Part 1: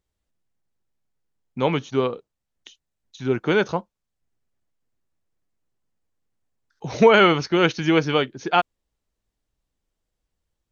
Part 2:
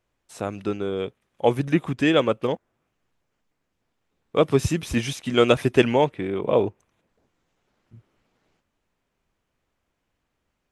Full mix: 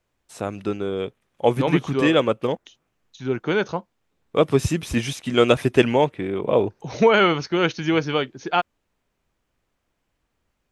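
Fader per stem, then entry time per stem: -2.0, +1.0 dB; 0.00, 0.00 s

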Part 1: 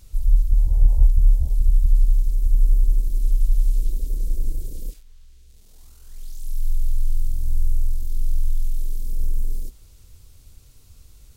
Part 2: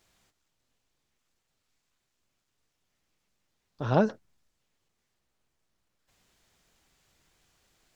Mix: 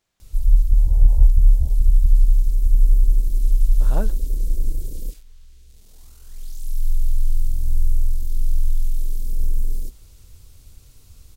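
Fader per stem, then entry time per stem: +2.0, -7.0 dB; 0.20, 0.00 s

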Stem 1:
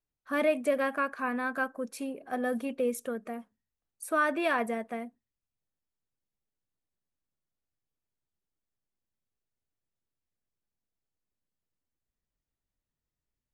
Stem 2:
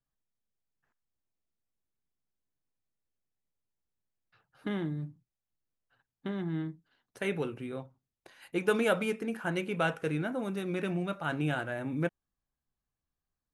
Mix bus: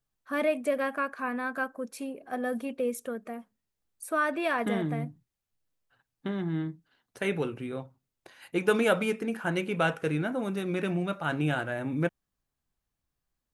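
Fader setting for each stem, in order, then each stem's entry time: -0.5, +3.0 dB; 0.00, 0.00 s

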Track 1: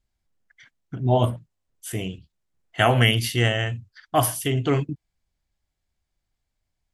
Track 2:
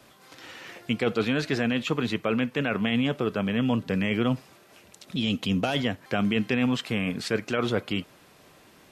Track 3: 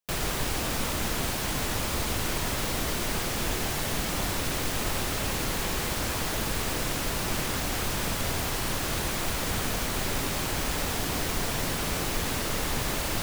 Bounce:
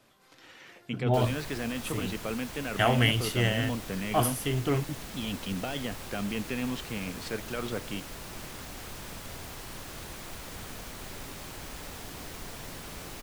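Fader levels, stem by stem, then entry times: -6.0, -8.5, -12.5 dB; 0.00, 0.00, 1.05 s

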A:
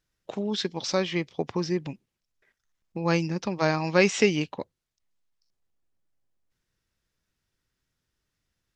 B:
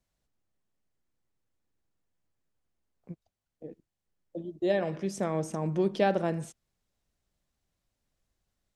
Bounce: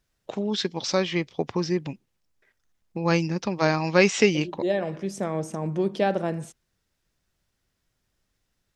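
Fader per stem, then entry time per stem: +2.0, +2.0 dB; 0.00, 0.00 s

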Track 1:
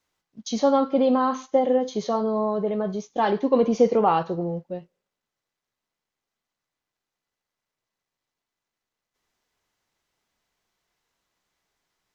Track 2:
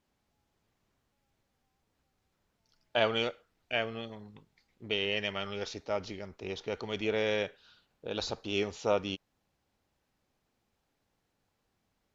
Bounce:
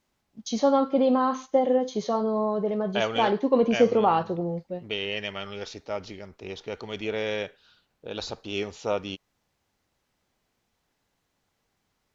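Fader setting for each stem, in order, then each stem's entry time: -1.5, +1.0 dB; 0.00, 0.00 s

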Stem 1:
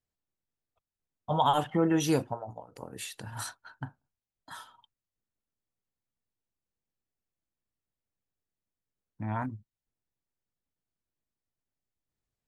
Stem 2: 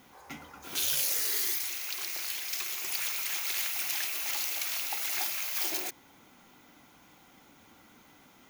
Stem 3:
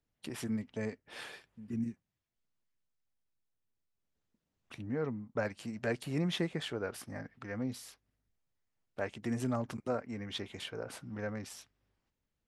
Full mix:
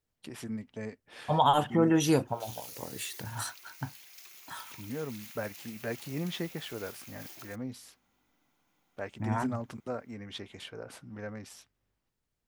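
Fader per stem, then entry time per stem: +1.5, -17.0, -2.0 dB; 0.00, 1.65, 0.00 s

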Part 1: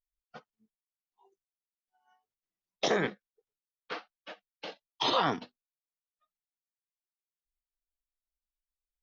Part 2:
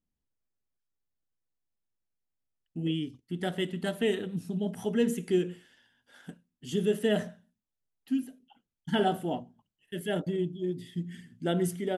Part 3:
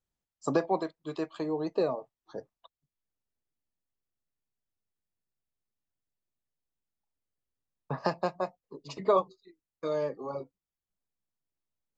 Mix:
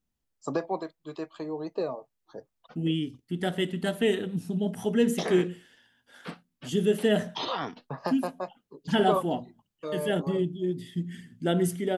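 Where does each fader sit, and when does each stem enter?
-4.5, +3.0, -2.5 dB; 2.35, 0.00, 0.00 s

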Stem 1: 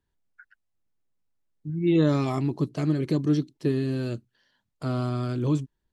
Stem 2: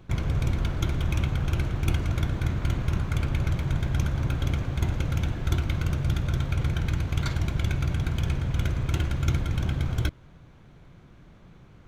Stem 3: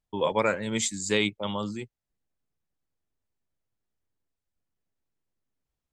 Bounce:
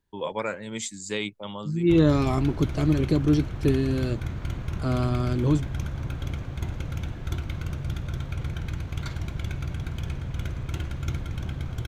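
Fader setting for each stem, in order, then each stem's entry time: +2.0, -5.0, -5.0 dB; 0.00, 1.80, 0.00 s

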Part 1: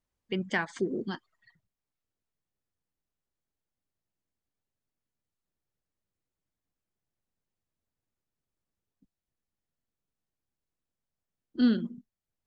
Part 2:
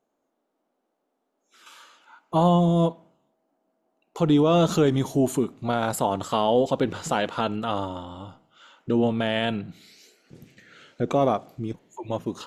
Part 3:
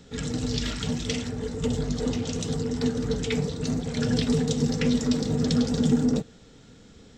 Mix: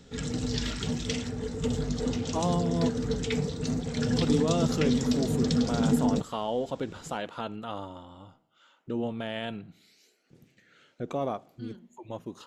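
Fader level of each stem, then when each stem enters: -19.0, -9.5, -2.5 dB; 0.00, 0.00, 0.00 s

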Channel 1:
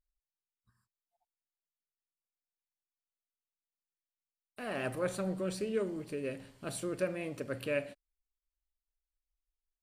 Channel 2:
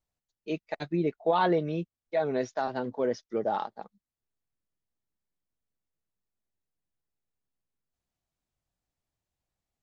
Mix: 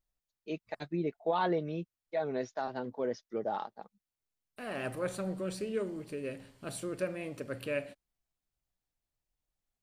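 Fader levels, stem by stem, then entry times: -1.0, -5.5 dB; 0.00, 0.00 s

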